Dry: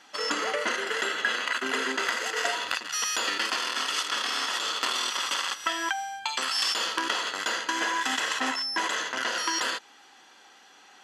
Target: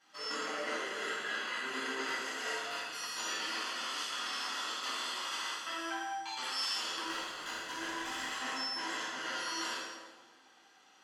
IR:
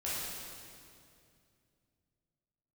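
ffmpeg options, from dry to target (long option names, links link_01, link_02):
-filter_complex "[0:a]asettb=1/sr,asplit=3[link_01][link_02][link_03];[link_01]atrim=end=7.044[link_04];[link_02]atrim=start=7.04:end=8.32,asetpts=PTS-STARTPTS,afade=type=in:duration=0.004:curve=qsin,afade=type=out:start_time=1.276:duration=0.004:curve=qsin,aeval=exprs='0.237*(cos(1*acos(clip(val(0)/0.237,-1,1)))-cos(1*PI/2))+0.0168*(cos(7*acos(clip(val(0)/0.237,-1,1)))-cos(7*PI/2))':channel_layout=same[link_05];[link_03]atrim=start=8.316[link_06];[link_04][link_05]acrossfade=duration=0.004:curve1=hsin:curve2=qsin[link_07];[link_07][link_06]acrossfade=duration=0.004:curve1=qsin:curve2=hsin[link_08];[1:a]atrim=start_sample=2205,asetrate=88200,aresample=44100[link_09];[link_08][link_09]afir=irnorm=-1:irlink=0,volume=-7.5dB"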